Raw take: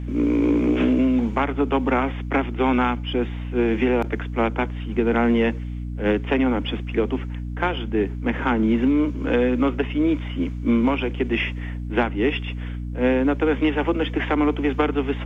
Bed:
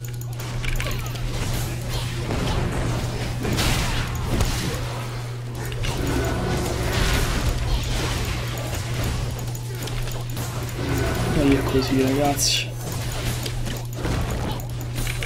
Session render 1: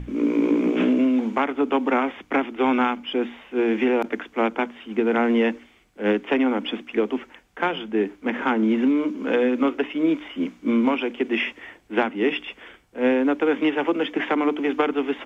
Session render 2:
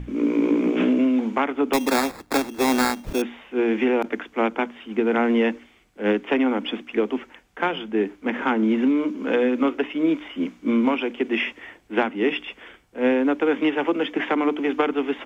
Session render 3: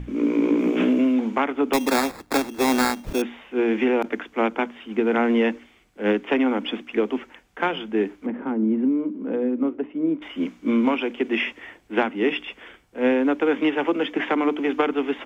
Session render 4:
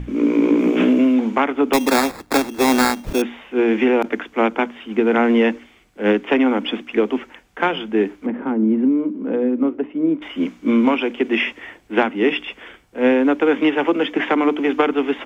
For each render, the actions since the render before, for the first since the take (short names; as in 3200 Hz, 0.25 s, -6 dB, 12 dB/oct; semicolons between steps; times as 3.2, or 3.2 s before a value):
notches 60/120/180/240/300 Hz
1.73–3.22 sample-rate reducer 3000 Hz
0.59–1.14 bell 14000 Hz +7.5 dB 1.1 oct; 8.26–10.22 band-pass 170 Hz, Q 0.58
gain +4.5 dB